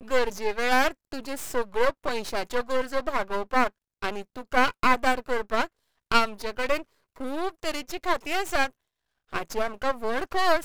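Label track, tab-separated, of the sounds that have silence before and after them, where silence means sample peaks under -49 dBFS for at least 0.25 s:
4.020000	5.670000	sound
6.110000	6.830000	sound
7.160000	8.710000	sound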